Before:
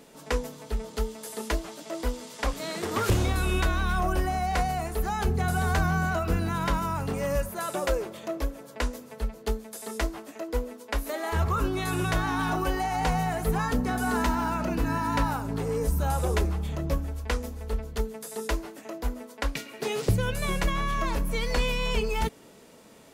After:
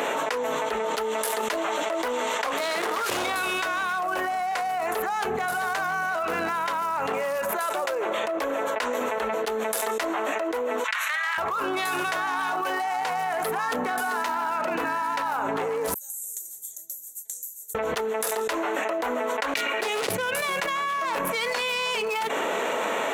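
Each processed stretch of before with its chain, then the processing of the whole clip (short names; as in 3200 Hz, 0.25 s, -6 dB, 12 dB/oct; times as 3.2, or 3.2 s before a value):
10.84–11.38 HPF 1400 Hz 24 dB/oct + upward compressor, threshold -44 dBFS + air absorption 56 m
15.94–17.75 inverse Chebyshev high-pass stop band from 2900 Hz, stop band 60 dB + compressor 16:1, threshold -51 dBFS
whole clip: Wiener smoothing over 9 samples; HPF 670 Hz 12 dB/oct; fast leveller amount 100%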